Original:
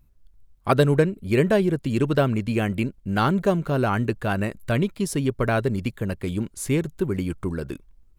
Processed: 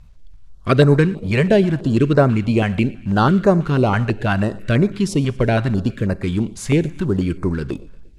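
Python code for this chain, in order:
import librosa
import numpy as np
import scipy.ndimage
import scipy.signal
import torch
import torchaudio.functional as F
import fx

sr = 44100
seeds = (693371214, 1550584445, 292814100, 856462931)

y = fx.law_mismatch(x, sr, coded='mu')
y = scipy.signal.sosfilt(scipy.signal.butter(2, 6000.0, 'lowpass', fs=sr, output='sos'), y)
y = fx.echo_feedback(y, sr, ms=117, feedback_pct=55, wet_db=-22.5)
y = fx.rev_schroeder(y, sr, rt60_s=0.79, comb_ms=31, drr_db=19.5)
y = fx.filter_held_notch(y, sr, hz=6.1, low_hz=320.0, high_hz=3100.0)
y = y * 10.0 ** (6.5 / 20.0)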